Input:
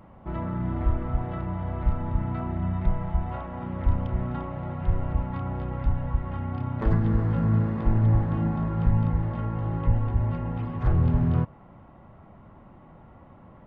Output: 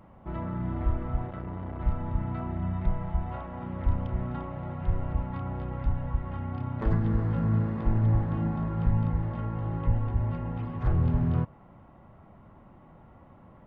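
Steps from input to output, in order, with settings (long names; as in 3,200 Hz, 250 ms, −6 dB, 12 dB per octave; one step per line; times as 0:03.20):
0:01.27–0:01.80: saturating transformer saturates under 250 Hz
level −3 dB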